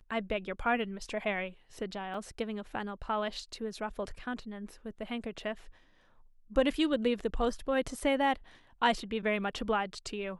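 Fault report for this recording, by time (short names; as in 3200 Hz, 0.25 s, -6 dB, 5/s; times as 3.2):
2.14 gap 3.4 ms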